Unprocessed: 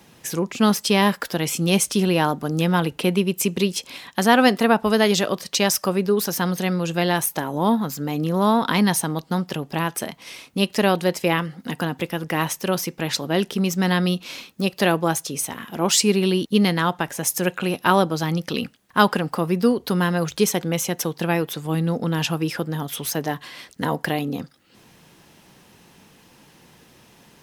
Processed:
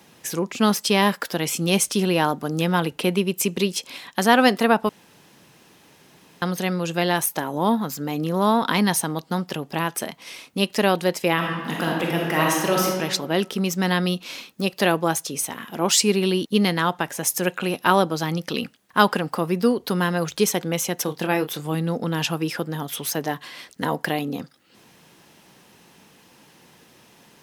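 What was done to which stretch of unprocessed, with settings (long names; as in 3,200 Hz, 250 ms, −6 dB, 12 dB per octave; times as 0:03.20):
0:04.89–0:06.42: fill with room tone
0:11.35–0:12.86: thrown reverb, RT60 1.4 s, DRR −2 dB
0:21.03–0:21.72: double-tracking delay 27 ms −8.5 dB
whole clip: low-shelf EQ 95 Hz −11.5 dB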